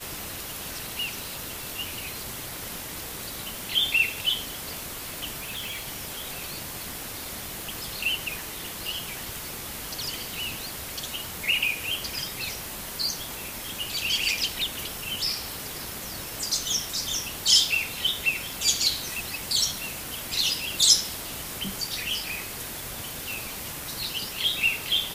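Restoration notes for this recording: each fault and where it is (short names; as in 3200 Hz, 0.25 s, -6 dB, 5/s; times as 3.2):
5.39–5.87 clipped -29.5 dBFS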